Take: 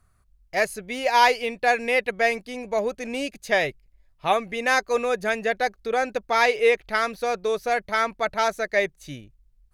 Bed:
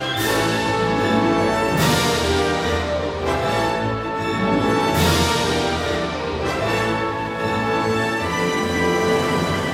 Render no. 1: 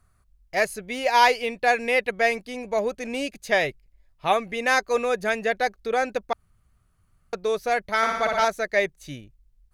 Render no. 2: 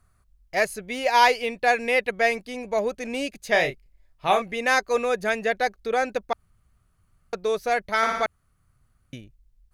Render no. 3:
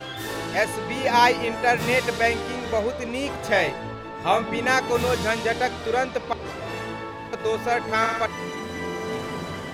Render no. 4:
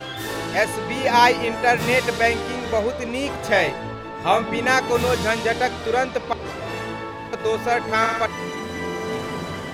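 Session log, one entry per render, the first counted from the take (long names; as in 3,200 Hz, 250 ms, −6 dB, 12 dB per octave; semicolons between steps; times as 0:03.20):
0:06.33–0:07.33: fill with room tone; 0:07.97–0:08.45: flutter between parallel walls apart 10 metres, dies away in 0.99 s
0:03.51–0:04.42: double-tracking delay 29 ms −6.5 dB; 0:08.26–0:09.13: fill with room tone
mix in bed −11.5 dB
level +2.5 dB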